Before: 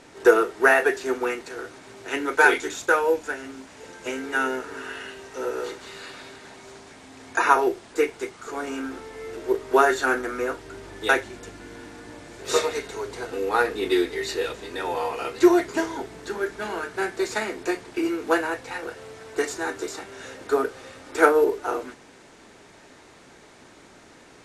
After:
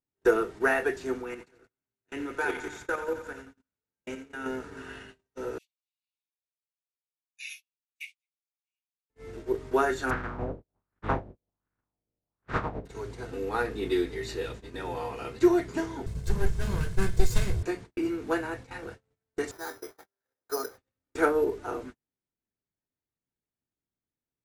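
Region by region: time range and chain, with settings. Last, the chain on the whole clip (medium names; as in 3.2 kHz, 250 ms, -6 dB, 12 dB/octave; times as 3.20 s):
1.21–4.46 s: level held to a coarse grid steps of 10 dB + thinning echo 88 ms, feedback 74%, high-pass 440 Hz, level -10 dB
5.58–9.10 s: steep high-pass 2.3 kHz 72 dB/octave + peaking EQ 7.4 kHz -5.5 dB 1.8 oct + three bands expanded up and down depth 70%
10.09–12.85 s: spectral contrast reduction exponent 0.29 + LFO low-pass sine 1.3 Hz 500–1500 Hz
16.06–17.63 s: comb filter that takes the minimum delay 1.9 ms + tone controls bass +14 dB, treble +10 dB
19.51–20.78 s: careless resampling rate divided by 8×, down filtered, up zero stuff + three-band isolator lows -17 dB, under 410 Hz, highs -18 dB, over 2.2 kHz
whole clip: gate -36 dBFS, range -42 dB; tone controls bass +15 dB, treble -1 dB; trim -8.5 dB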